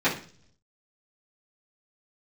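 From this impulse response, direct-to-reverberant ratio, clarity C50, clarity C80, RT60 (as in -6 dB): -12.5 dB, 9.0 dB, 14.5 dB, 0.45 s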